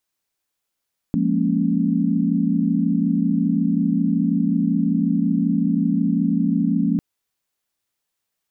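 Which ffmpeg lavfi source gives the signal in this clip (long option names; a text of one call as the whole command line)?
ffmpeg -f lavfi -i "aevalsrc='0.0794*(sin(2*PI*174.61*t)+sin(2*PI*207.65*t)+sin(2*PI*233.08*t)+sin(2*PI*277.18*t))':duration=5.85:sample_rate=44100" out.wav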